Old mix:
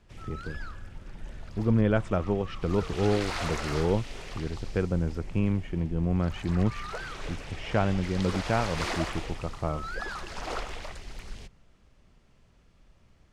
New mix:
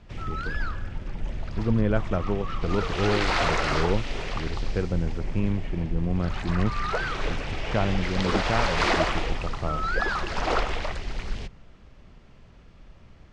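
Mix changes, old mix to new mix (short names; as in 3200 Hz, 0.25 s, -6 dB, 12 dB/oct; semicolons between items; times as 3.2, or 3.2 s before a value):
background +10.0 dB; master: add air absorption 100 m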